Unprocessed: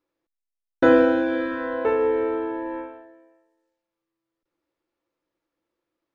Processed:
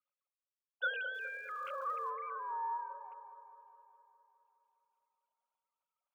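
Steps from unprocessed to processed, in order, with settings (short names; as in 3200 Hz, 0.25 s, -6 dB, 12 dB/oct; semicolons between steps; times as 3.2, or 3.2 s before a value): sine-wave speech; steep high-pass 510 Hz 72 dB/oct; fixed phaser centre 1800 Hz, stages 6; 1.13–2.09 crackle 600/s -57 dBFS; dark delay 0.206 s, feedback 66%, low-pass 930 Hz, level -8 dB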